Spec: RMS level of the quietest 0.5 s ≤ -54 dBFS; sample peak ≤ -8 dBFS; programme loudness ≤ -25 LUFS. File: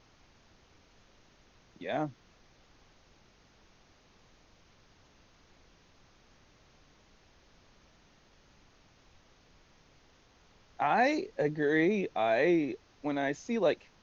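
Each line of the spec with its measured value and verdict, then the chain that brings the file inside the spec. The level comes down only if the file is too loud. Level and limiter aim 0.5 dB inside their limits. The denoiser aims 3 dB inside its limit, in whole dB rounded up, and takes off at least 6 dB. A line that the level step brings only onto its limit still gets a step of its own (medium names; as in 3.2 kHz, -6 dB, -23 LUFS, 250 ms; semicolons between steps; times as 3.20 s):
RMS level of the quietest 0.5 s -63 dBFS: pass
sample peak -15.0 dBFS: pass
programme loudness -30.5 LUFS: pass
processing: none needed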